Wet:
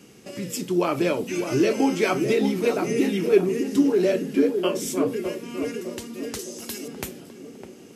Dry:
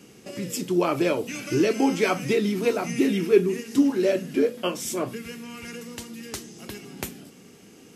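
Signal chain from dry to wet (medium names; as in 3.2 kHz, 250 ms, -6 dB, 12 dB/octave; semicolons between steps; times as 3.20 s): 6.39–6.88 s: tone controls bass -7 dB, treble +11 dB; band-passed feedback delay 607 ms, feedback 59%, band-pass 350 Hz, level -5 dB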